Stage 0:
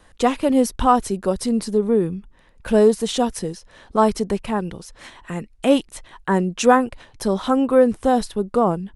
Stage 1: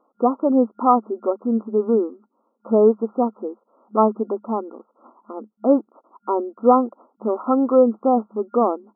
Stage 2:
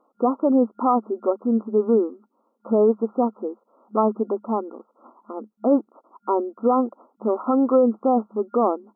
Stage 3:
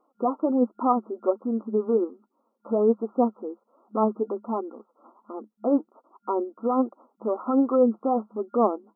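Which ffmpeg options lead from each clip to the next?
ffmpeg -i in.wav -af "agate=range=-6dB:threshold=-41dB:ratio=16:detection=peak,afftfilt=real='re*between(b*sr/4096,210,1400)':imag='im*between(b*sr/4096,210,1400)':win_size=4096:overlap=0.75" out.wav
ffmpeg -i in.wav -af "alimiter=limit=-9.5dB:level=0:latency=1:release=17" out.wav
ffmpeg -i in.wav -af "flanger=delay=2.4:depth=4.6:regen=52:speed=1.3:shape=triangular" out.wav

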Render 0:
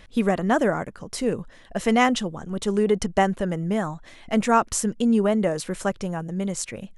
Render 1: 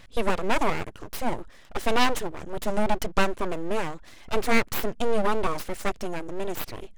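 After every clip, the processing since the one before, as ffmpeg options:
ffmpeg -i in.wav -af "aeval=exprs='abs(val(0))':channel_layout=same" out.wav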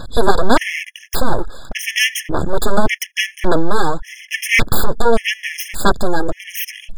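ffmpeg -i in.wav -af "aphaser=in_gain=1:out_gain=1:delay=2.5:decay=0.45:speed=1.7:type=sinusoidal,aeval=exprs='0.668*sin(PI/2*4.47*val(0)/0.668)':channel_layout=same,afftfilt=real='re*gt(sin(2*PI*0.87*pts/sr)*(1-2*mod(floor(b*sr/1024/1700),2)),0)':imag='im*gt(sin(2*PI*0.87*pts/sr)*(1-2*mod(floor(b*sr/1024/1700),2)),0)':win_size=1024:overlap=0.75" out.wav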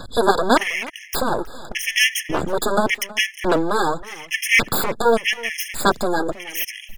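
ffmpeg -i in.wav -filter_complex "[0:a]lowshelf=frequency=120:gain=-7.5,acrossover=split=140|1600[link_01][link_02][link_03];[link_01]acompressor=threshold=-25dB:ratio=6[link_04];[link_04][link_02][link_03]amix=inputs=3:normalize=0,asplit=2[link_05][link_06];[link_06]adelay=320.7,volume=-19dB,highshelf=frequency=4000:gain=-7.22[link_07];[link_05][link_07]amix=inputs=2:normalize=0,volume=-1dB" out.wav

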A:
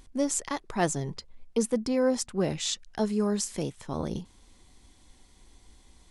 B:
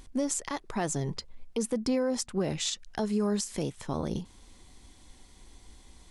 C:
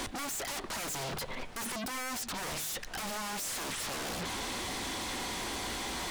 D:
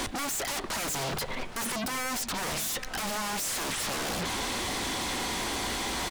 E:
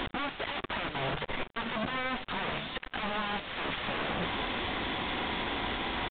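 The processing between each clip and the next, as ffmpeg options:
ffmpeg -i in.wav -af "alimiter=limit=-23dB:level=0:latency=1:release=167,volume=3dB" out.wav
ffmpeg -i in.wav -filter_complex "[0:a]asplit=2[link_01][link_02];[link_02]highpass=frequency=720:poles=1,volume=36dB,asoftclip=type=tanh:threshold=-19.5dB[link_03];[link_01][link_03]amix=inputs=2:normalize=0,lowpass=frequency=1700:poles=1,volume=-6dB,aeval=exprs='0.0158*(abs(mod(val(0)/0.0158+3,4)-2)-1)':channel_layout=same,bandreject=frequency=151.6:width_type=h:width=4,bandreject=frequency=303.2:width_type=h:width=4,bandreject=frequency=454.8:width_type=h:width=4,bandreject=frequency=606.4:width_type=h:width=4,bandreject=frequency=758:width_type=h:width=4,bandreject=frequency=909.6:width_type=h:width=4,bandreject=frequency=1061.2:width_type=h:width=4,bandreject=frequency=1212.8:width_type=h:width=4,bandreject=frequency=1364.4:width_type=h:width=4,bandreject=frequency=1516:width_type=h:width=4,bandreject=frequency=1667.6:width_type=h:width=4,bandreject=frequency=1819.2:width_type=h:width=4,bandreject=frequency=1970.8:width_type=h:width=4,bandreject=frequency=2122.4:width_type=h:width=4,bandreject=frequency=2274:width_type=h:width=4,bandreject=frequency=2425.6:width_type=h:width=4,bandreject=frequency=2577.2:width_type=h:width=4,bandreject=frequency=2728.8:width_type=h:width=4,bandreject=frequency=2880.4:width_type=h:width=4,bandreject=frequency=3032:width_type=h:width=4,bandreject=frequency=3183.6:width_type=h:width=4,bandreject=frequency=3335.2:width_type=h:width=4,bandreject=frequency=3486.8:width_type=h:width=4,bandreject=frequency=3638.4:width_type=h:width=4,bandreject=frequency=3790:width_type=h:width=4,bandreject=frequency=3941.6:width_type=h:width=4,bandreject=frequency=4093.2:width_type=h:width=4,bandreject=frequency=4244.8:width_type=h:width=4,bandreject=frequency=4396.4:width_type=h:width=4,volume=4dB" out.wav
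ffmpeg -i in.wav -filter_complex "[0:a]asplit=2[link_01][link_02];[link_02]adelay=816.3,volume=-13dB,highshelf=frequency=4000:gain=-18.4[link_03];[link_01][link_03]amix=inputs=2:normalize=0,volume=5dB" out.wav
ffmpeg -i in.wav -af "acrusher=bits=4:mix=0:aa=0.5,aresample=8000,aresample=44100" out.wav

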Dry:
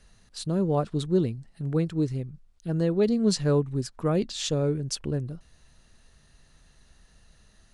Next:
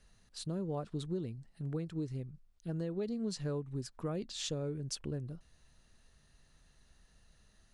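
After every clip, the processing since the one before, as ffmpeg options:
ffmpeg -i in.wav -af "acompressor=threshold=-26dB:ratio=6,volume=-7.5dB" out.wav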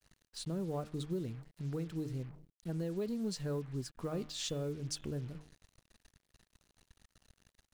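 ffmpeg -i in.wav -filter_complex "[0:a]bandreject=frequency=151.7:width_type=h:width=4,bandreject=frequency=303.4:width_type=h:width=4,bandreject=frequency=455.1:width_type=h:width=4,bandreject=frequency=606.8:width_type=h:width=4,bandreject=frequency=758.5:width_type=h:width=4,bandreject=frequency=910.2:width_type=h:width=4,bandreject=frequency=1061.9:width_type=h:width=4,bandreject=frequency=1213.6:width_type=h:width=4,bandreject=frequency=1365.3:width_type=h:width=4,bandreject=frequency=1517:width_type=h:width=4,bandreject=frequency=1668.7:width_type=h:width=4,bandreject=frequency=1820.4:width_type=h:width=4,bandreject=frequency=1972.1:width_type=h:width=4,bandreject=frequency=2123.8:width_type=h:width=4,bandreject=frequency=2275.5:width_type=h:width=4,bandreject=frequency=2427.2:width_type=h:width=4,bandreject=frequency=2578.9:width_type=h:width=4,bandreject=frequency=2730.6:width_type=h:width=4,bandreject=frequency=2882.3:width_type=h:width=4,bandreject=frequency=3034:width_type=h:width=4,bandreject=frequency=3185.7:width_type=h:width=4,bandreject=frequency=3337.4:width_type=h:width=4,bandreject=frequency=3489.1:width_type=h:width=4,asplit=2[link_01][link_02];[link_02]asoftclip=type=hard:threshold=-36.5dB,volume=-12dB[link_03];[link_01][link_03]amix=inputs=2:normalize=0,acrusher=bits=8:mix=0:aa=0.5,volume=-1.5dB" out.wav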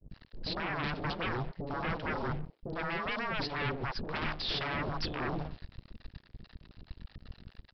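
ffmpeg -i in.wav -filter_complex "[0:a]lowshelf=frequency=420:gain=11,aresample=11025,aeval=exprs='0.0376*sin(PI/2*3.16*val(0)/0.0376)':channel_layout=same,aresample=44100,acrossover=split=590[link_01][link_02];[link_02]adelay=100[link_03];[link_01][link_03]amix=inputs=2:normalize=0,volume=-2.5dB" out.wav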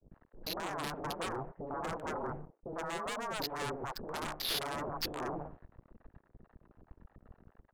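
ffmpeg -i in.wav -filter_complex "[0:a]bass=frequency=250:gain=-10,treble=frequency=4000:gain=4,acrossover=split=180|940|1300[link_01][link_02][link_03][link_04];[link_04]acrusher=bits=4:mix=0:aa=0.5[link_05];[link_01][link_02][link_03][link_05]amix=inputs=4:normalize=0" out.wav

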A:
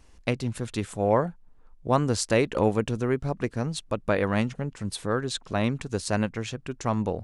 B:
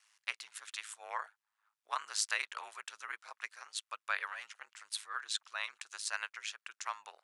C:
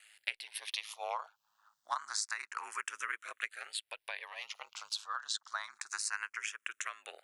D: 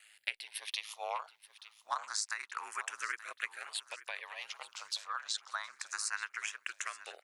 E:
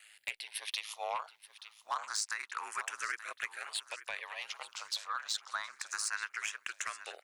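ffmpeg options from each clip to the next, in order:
ffmpeg -i in.wav -af "highpass=frequency=1200:width=0.5412,highpass=frequency=1200:width=1.3066,aeval=exprs='val(0)*sin(2*PI*53*n/s)':channel_layout=same,volume=-1dB" out.wav
ffmpeg -i in.wav -filter_complex "[0:a]acompressor=threshold=-45dB:ratio=6,asplit=2[link_01][link_02];[link_02]afreqshift=0.28[link_03];[link_01][link_03]amix=inputs=2:normalize=1,volume=12.5dB" out.wav
ffmpeg -i in.wav -af "aecho=1:1:879|1758|2637|3516:0.158|0.0761|0.0365|0.0175" out.wav
ffmpeg -i in.wav -af "asoftclip=type=tanh:threshold=-27dB,volume=2.5dB" out.wav

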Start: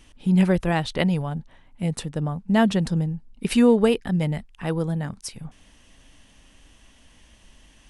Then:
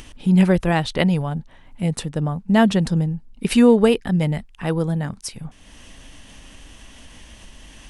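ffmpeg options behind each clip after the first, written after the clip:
ffmpeg -i in.wav -af "acompressor=mode=upward:threshold=-37dB:ratio=2.5,volume=3.5dB" out.wav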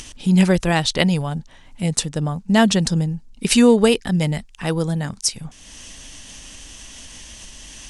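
ffmpeg -i in.wav -af "equalizer=frequency=6400:width_type=o:width=1.7:gain=13" out.wav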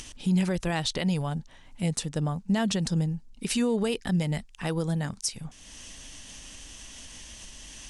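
ffmpeg -i in.wav -af "alimiter=limit=-12dB:level=0:latency=1:release=79,volume=-5.5dB" out.wav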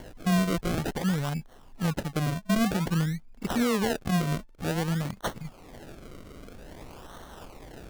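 ffmpeg -i in.wav -af "acrusher=samples=35:mix=1:aa=0.000001:lfo=1:lforange=35:lforate=0.52" out.wav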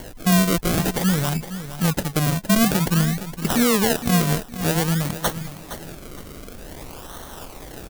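ffmpeg -i in.wav -filter_complex "[0:a]asplit=2[link_01][link_02];[link_02]aecho=0:1:464|928|1392:0.251|0.0678|0.0183[link_03];[link_01][link_03]amix=inputs=2:normalize=0,crystalizer=i=1.5:c=0,volume=6.5dB" out.wav

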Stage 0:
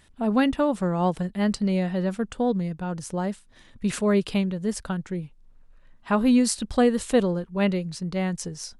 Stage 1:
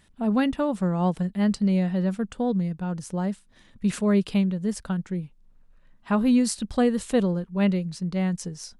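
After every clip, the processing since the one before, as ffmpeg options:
ffmpeg -i in.wav -af "equalizer=frequency=190:width=2.4:gain=5.5,volume=-3dB" out.wav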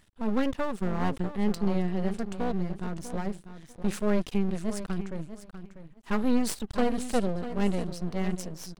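ffmpeg -i in.wav -af "aecho=1:1:645|1290:0.266|0.0506,aeval=exprs='max(val(0),0)':channel_layout=same" out.wav

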